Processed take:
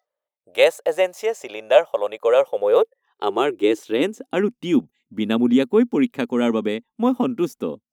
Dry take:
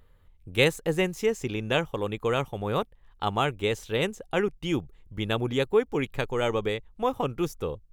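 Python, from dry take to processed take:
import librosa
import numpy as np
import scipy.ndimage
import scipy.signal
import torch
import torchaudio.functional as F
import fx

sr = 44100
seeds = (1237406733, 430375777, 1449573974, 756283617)

y = fx.noise_reduce_blind(x, sr, reduce_db=22)
y = fx.filter_sweep_highpass(y, sr, from_hz=610.0, to_hz=240.0, start_s=2.06, end_s=4.49, q=7.5)
y = y * librosa.db_to_amplitude(1.5)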